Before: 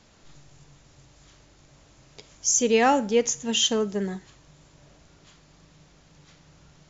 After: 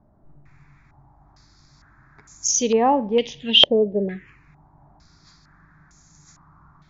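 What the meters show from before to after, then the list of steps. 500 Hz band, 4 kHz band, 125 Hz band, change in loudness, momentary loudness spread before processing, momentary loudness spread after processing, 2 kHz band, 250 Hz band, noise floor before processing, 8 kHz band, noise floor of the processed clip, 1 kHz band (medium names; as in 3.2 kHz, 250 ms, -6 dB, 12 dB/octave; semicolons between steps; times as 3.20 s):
+3.5 dB, +10.0 dB, +2.5 dB, +4.5 dB, 11 LU, 13 LU, 0.0 dB, +2.0 dB, -57 dBFS, no reading, -57 dBFS, +2.5 dB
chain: touch-sensitive phaser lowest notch 490 Hz, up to 1.4 kHz, full sweep at -22.5 dBFS; step-sequenced low-pass 2.2 Hz 570–6700 Hz; trim +2 dB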